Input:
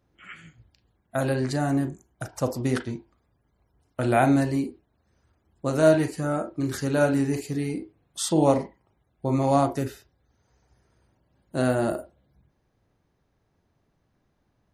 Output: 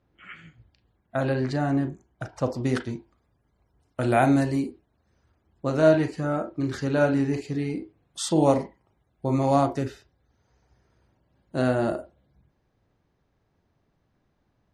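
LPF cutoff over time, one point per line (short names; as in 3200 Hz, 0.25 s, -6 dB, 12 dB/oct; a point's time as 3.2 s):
2.47 s 4200 Hz
2.87 s 10000 Hz
4.68 s 10000 Hz
5.7 s 4800 Hz
7.65 s 4800 Hz
8.44 s 9800 Hz
9.36 s 9800 Hz
9.78 s 6000 Hz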